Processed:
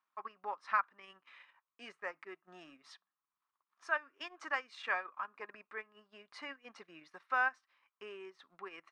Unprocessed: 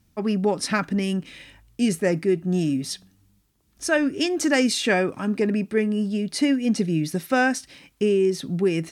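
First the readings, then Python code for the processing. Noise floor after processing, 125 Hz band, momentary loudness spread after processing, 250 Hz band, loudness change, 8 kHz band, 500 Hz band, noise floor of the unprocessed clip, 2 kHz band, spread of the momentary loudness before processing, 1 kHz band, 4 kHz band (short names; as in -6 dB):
under -85 dBFS, under -40 dB, 22 LU, -38.0 dB, -16.0 dB, -34.0 dB, -26.0 dB, -64 dBFS, -10.0 dB, 7 LU, -8.0 dB, -21.5 dB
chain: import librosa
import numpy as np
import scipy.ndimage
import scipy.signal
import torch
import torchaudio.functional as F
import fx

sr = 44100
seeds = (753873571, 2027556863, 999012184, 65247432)

y = fx.ladder_bandpass(x, sr, hz=1200.0, resonance_pct=70)
y = fx.transient(y, sr, attack_db=0, sustain_db=-12)
y = y * 10.0 ** (1.0 / 20.0)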